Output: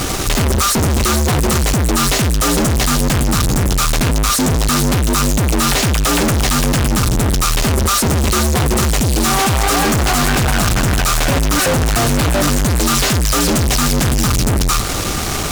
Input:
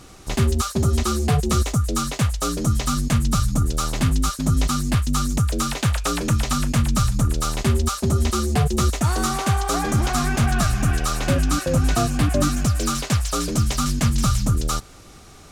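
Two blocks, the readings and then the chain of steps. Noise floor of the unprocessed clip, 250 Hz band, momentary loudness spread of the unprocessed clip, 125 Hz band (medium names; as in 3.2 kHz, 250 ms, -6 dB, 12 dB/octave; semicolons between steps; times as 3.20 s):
-44 dBFS, +6.0 dB, 3 LU, +4.0 dB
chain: spectral selection erased 9.00–9.25 s, 530–2200 Hz; fuzz box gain 49 dB, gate -47 dBFS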